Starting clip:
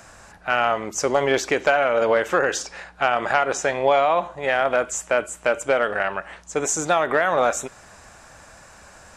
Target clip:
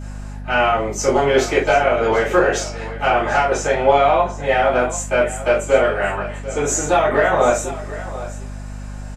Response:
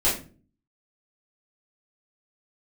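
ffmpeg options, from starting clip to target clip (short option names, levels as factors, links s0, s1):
-filter_complex "[0:a]aecho=1:1:742:0.178[s0];[1:a]atrim=start_sample=2205,afade=t=out:st=0.15:d=0.01,atrim=end_sample=7056[s1];[s0][s1]afir=irnorm=-1:irlink=0,aeval=exprs='val(0)+0.112*(sin(2*PI*50*n/s)+sin(2*PI*2*50*n/s)/2+sin(2*PI*3*50*n/s)/3+sin(2*PI*4*50*n/s)/4+sin(2*PI*5*50*n/s)/5)':c=same,volume=0.316"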